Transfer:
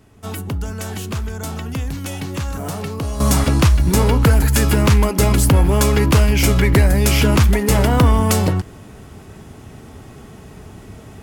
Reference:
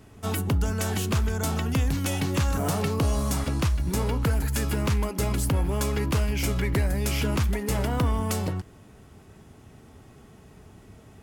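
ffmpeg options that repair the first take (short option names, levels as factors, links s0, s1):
-af "asetnsamples=n=441:p=0,asendcmd='3.2 volume volume -11.5dB',volume=1"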